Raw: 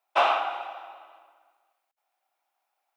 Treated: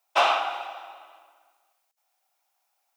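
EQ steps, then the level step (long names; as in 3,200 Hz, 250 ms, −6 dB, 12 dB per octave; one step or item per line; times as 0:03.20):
high-shelf EQ 4,100 Hz +9.5 dB
parametric band 5,800 Hz +4 dB 1 octave
0.0 dB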